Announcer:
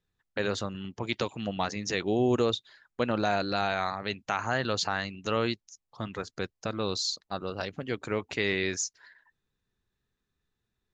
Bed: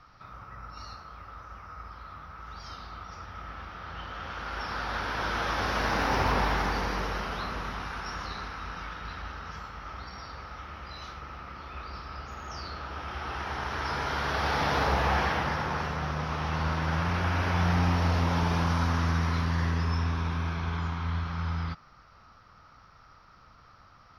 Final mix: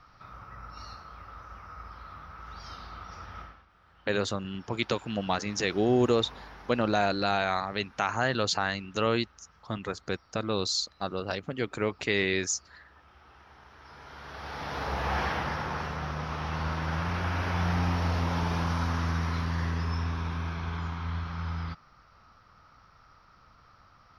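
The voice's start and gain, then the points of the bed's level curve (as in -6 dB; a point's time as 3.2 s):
3.70 s, +1.5 dB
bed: 3.41 s -1 dB
3.66 s -20.5 dB
13.78 s -20.5 dB
15.21 s -2.5 dB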